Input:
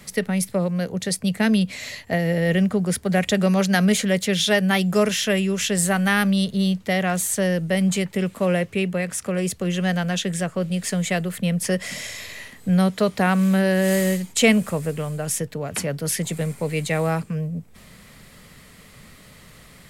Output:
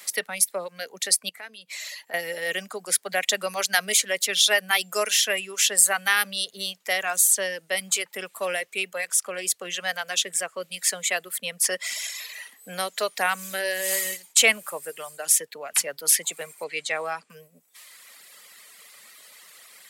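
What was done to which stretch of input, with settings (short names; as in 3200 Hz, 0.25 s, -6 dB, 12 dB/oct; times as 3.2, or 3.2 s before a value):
1.29–2.14 compressor 3:1, threshold -34 dBFS
16.64–17.3 air absorption 74 m
whole clip: reverb removal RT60 1.2 s; HPF 510 Hz 12 dB/oct; tilt +2.5 dB/oct; gain -1 dB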